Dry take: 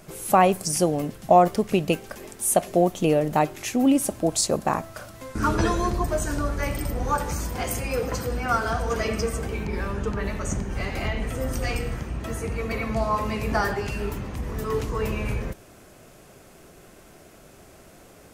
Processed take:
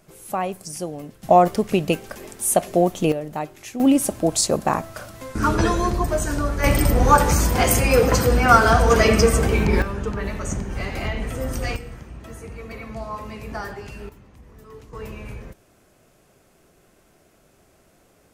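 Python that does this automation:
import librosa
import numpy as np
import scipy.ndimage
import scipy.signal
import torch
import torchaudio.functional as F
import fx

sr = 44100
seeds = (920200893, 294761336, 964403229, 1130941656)

y = fx.gain(x, sr, db=fx.steps((0.0, -8.0), (1.23, 2.0), (3.12, -7.0), (3.8, 3.0), (6.64, 10.5), (9.82, 1.0), (11.76, -7.5), (14.09, -16.5), (14.93, -8.0)))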